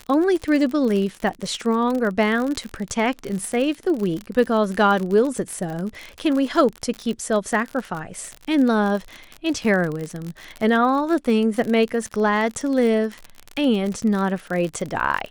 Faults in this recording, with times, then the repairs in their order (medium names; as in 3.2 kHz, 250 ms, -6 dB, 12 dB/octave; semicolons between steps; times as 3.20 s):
crackle 50 per s -25 dBFS
9.64–9.65 s: dropout 5.8 ms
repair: de-click; interpolate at 9.64 s, 5.8 ms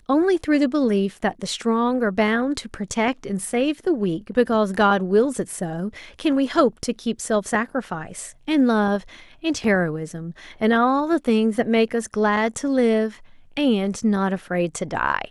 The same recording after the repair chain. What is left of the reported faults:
nothing left